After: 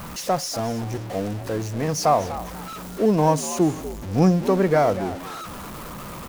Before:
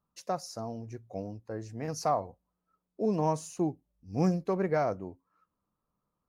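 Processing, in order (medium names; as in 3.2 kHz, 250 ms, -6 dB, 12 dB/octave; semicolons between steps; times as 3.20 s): jump at every zero crossing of -38 dBFS; frequency-shifting echo 243 ms, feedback 30%, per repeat +76 Hz, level -14.5 dB; trim +9 dB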